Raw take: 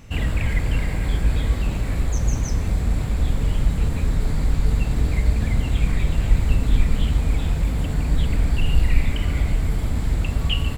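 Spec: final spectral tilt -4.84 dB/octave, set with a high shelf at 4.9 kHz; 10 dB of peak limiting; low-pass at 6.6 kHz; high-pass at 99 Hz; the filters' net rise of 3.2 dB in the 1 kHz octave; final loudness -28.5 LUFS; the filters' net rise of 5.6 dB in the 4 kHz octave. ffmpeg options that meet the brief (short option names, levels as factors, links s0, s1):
-af "highpass=99,lowpass=6600,equalizer=f=1000:t=o:g=3.5,equalizer=f=4000:t=o:g=5.5,highshelf=f=4900:g=6.5,volume=1.06,alimiter=limit=0.112:level=0:latency=1"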